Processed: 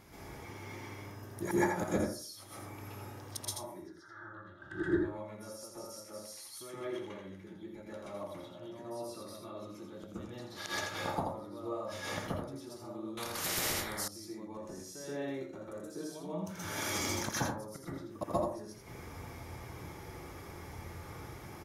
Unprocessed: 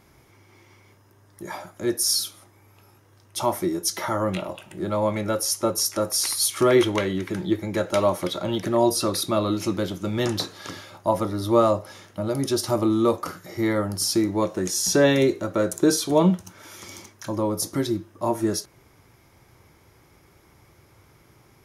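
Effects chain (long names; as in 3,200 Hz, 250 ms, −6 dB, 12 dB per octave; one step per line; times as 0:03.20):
gate with flip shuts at −23 dBFS, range −30 dB
0:03.75–0:04.84: drawn EQ curve 100 Hz 0 dB, 220 Hz −12 dB, 340 Hz 0 dB, 500 Hz −13 dB, 1,000 Hz −9 dB, 1,600 Hz +14 dB, 2,400 Hz −27 dB, 3,600 Hz −4 dB, 12,000 Hz −28 dB
single-tap delay 83 ms −6 dB
convolution reverb RT60 0.45 s, pre-delay 117 ms, DRR −8.5 dB
0:13.17–0:14.08: every bin compressed towards the loudest bin 4 to 1
level −1.5 dB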